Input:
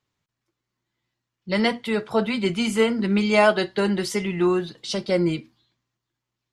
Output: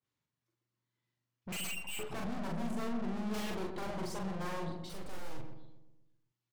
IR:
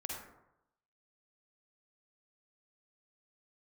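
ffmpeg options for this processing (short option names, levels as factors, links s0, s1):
-filter_complex "[0:a]highpass=70,bandreject=f=710:w=19,afwtdn=0.0631,asettb=1/sr,asplit=3[s0][s1][s2];[s0]atrim=end=1.524[s3];[s1]atrim=start=1.52:end=1.99,asetpts=PTS-STARTPTS,afade=t=in:d=0.004:c=qsin,afade=t=out:st=0.466:d=0.004:c=qsin,lowpass=f=2600:t=q:w=0.5098,lowpass=f=2600:t=q:w=0.6013,lowpass=f=2600:t=q:w=0.9,lowpass=f=2600:t=q:w=2.563,afreqshift=-3000[s4];[s2]atrim=start=1.986[s5];[s3][s4]acrossfade=d=0.004:c1=hsin:c2=qsin[s6];[s6][s5]acrossfade=d=0.004:c1=qsin:c2=hsin,asettb=1/sr,asplit=3[s7][s8][s9];[s7]atrim=end=2.664[s10];[s8]atrim=start=2.66:end=3.49,asetpts=PTS-STARTPTS,afade=t=in:d=0.004:c=qsin,afade=t=out:st=0.826:d=0.004:c=qsin,lowshelf=f=280:g=-10[s11];[s9]atrim=start=3.486[s12];[s10][s11]acrossfade=d=0.004:c1=hsin:c2=qsin[s13];[s13][s12]acrossfade=d=0.004:c1=qsin:c2=hsin,acrossover=split=570|1500[s14][s15][s16];[s15]acompressor=threshold=0.0141:ratio=6[s17];[s14][s17][s16]amix=inputs=3:normalize=0,aeval=exprs='0.0596*(abs(mod(val(0)/0.0596+3,4)-2)-1)':c=same,aeval=exprs='(tanh(224*val(0)+0.4)-tanh(0.4))/224':c=same,asplit=3[s18][s19][s20];[s18]afade=t=out:st=4.88:d=0.02[s21];[s19]aeval=exprs='abs(val(0))':c=same,afade=t=in:st=4.88:d=0.02,afade=t=out:st=5.38:d=0.02[s22];[s20]afade=t=in:st=5.38:d=0.02[s23];[s21][s22][s23]amix=inputs=3:normalize=0,asplit=2[s24][s25];[s25]adelay=42,volume=0.708[s26];[s24][s26]amix=inputs=2:normalize=0,asplit=2[s27][s28];[s28]adelay=124,lowpass=f=970:p=1,volume=0.562,asplit=2[s29][s30];[s30]adelay=124,lowpass=f=970:p=1,volume=0.53,asplit=2[s31][s32];[s32]adelay=124,lowpass=f=970:p=1,volume=0.53,asplit=2[s33][s34];[s34]adelay=124,lowpass=f=970:p=1,volume=0.53,asplit=2[s35][s36];[s36]adelay=124,lowpass=f=970:p=1,volume=0.53,asplit=2[s37][s38];[s38]adelay=124,lowpass=f=970:p=1,volume=0.53,asplit=2[s39][s40];[s40]adelay=124,lowpass=f=970:p=1,volume=0.53[s41];[s27][s29][s31][s33][s35][s37][s39][s41]amix=inputs=8:normalize=0,adynamicequalizer=threshold=0.00112:dfrequency=1600:dqfactor=0.7:tfrequency=1600:tqfactor=0.7:attack=5:release=100:ratio=0.375:range=2:mode=cutabove:tftype=highshelf,volume=2.11"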